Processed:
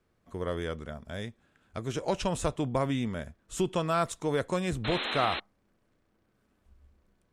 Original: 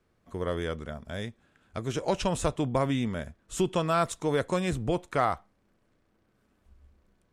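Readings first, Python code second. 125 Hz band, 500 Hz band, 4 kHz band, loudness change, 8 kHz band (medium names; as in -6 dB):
-2.0 dB, -2.0 dB, +2.5 dB, -1.5 dB, -2.0 dB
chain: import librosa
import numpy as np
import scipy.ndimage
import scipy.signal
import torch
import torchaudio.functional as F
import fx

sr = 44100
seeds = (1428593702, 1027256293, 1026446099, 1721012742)

y = fx.spec_paint(x, sr, seeds[0], shape='noise', start_s=4.84, length_s=0.56, low_hz=200.0, high_hz=4200.0, level_db=-32.0)
y = F.gain(torch.from_numpy(y), -2.0).numpy()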